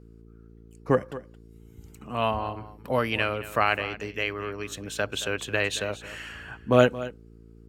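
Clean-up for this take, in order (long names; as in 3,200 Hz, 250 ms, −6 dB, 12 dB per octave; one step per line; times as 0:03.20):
hum removal 56.3 Hz, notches 8
echo removal 223 ms −15.5 dB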